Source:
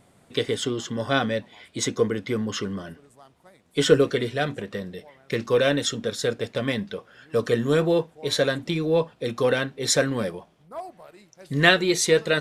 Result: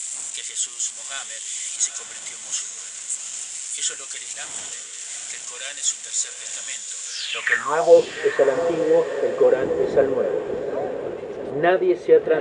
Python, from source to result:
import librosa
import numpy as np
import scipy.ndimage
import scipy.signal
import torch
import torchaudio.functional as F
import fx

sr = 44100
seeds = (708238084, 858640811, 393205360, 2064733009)

p1 = x + 0.5 * 10.0 ** (-18.0 / 20.0) * np.diff(np.sign(x), prepend=np.sign(x[:1]))
p2 = fx.dmg_wind(p1, sr, seeds[0], corner_hz=260.0, level_db=-29.0)
p3 = scipy.signal.sosfilt(scipy.signal.butter(16, 9700.0, 'lowpass', fs=sr, output='sos'), p2)
p4 = fx.low_shelf(p3, sr, hz=130.0, db=7.0)
p5 = fx.filter_sweep_bandpass(p4, sr, from_hz=7300.0, to_hz=410.0, start_s=7.05, end_s=8.0, q=6.3)
p6 = fx.band_shelf(p5, sr, hz=1400.0, db=12.0, octaves=2.8)
p7 = p6 + fx.echo_diffused(p6, sr, ms=813, feedback_pct=43, wet_db=-8, dry=0)
y = p7 * librosa.db_to_amplitude(8.5)